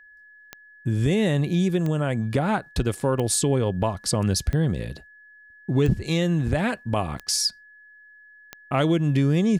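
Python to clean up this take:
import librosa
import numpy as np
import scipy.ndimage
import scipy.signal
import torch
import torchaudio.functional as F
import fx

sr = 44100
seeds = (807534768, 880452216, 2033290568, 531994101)

y = fx.fix_declick_ar(x, sr, threshold=10.0)
y = fx.notch(y, sr, hz=1700.0, q=30.0)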